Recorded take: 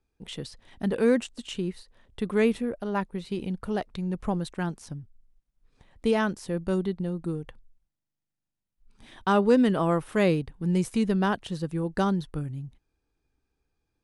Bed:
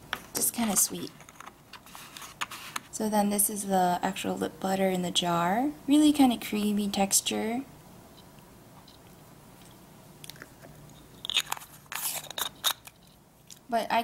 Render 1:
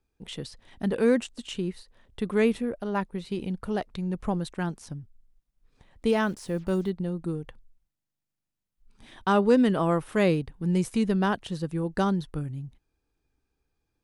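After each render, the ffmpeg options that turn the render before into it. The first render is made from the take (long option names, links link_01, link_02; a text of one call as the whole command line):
ffmpeg -i in.wav -filter_complex "[0:a]asettb=1/sr,asplit=3[link_01][link_02][link_03];[link_01]atrim=end=6.094[link_04];[link_02]atrim=start=6.09:end=6.9,asetpts=PTS-STARTPTS,afade=type=in:duration=0.004:curve=qsin,afade=type=out:start_time=0.806:duration=0.004:curve=qsin,acrusher=bits=8:mix=0:aa=0.5[link_05];[link_03]atrim=start=6.896[link_06];[link_04][link_05]acrossfade=duration=0.004:curve1=hsin:curve2=qsin[link_07];[link_07][link_06]acrossfade=duration=0.004:curve1=qsin:curve2=hsin" out.wav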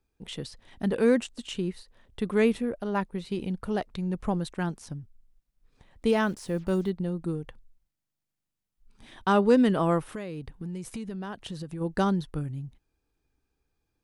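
ffmpeg -i in.wav -filter_complex "[0:a]asplit=3[link_01][link_02][link_03];[link_01]afade=type=out:start_time=10.13:duration=0.02[link_04];[link_02]acompressor=threshold=-32dB:ratio=12:attack=3.2:release=140:knee=1:detection=peak,afade=type=in:start_time=10.13:duration=0.02,afade=type=out:start_time=11.8:duration=0.02[link_05];[link_03]afade=type=in:start_time=11.8:duration=0.02[link_06];[link_04][link_05][link_06]amix=inputs=3:normalize=0" out.wav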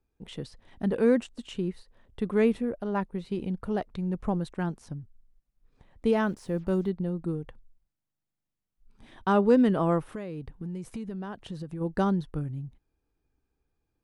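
ffmpeg -i in.wav -af "highshelf=frequency=2100:gain=-8.5" out.wav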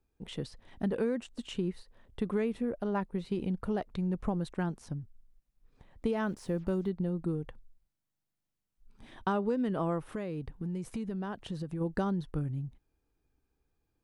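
ffmpeg -i in.wav -af "acompressor=threshold=-27dB:ratio=10" out.wav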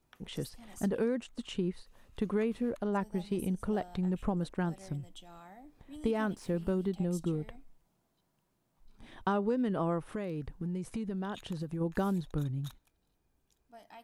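ffmpeg -i in.wav -i bed.wav -filter_complex "[1:a]volume=-26dB[link_01];[0:a][link_01]amix=inputs=2:normalize=0" out.wav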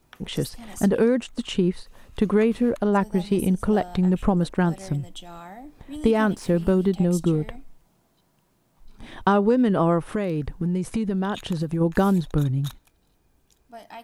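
ffmpeg -i in.wav -af "volume=11.5dB" out.wav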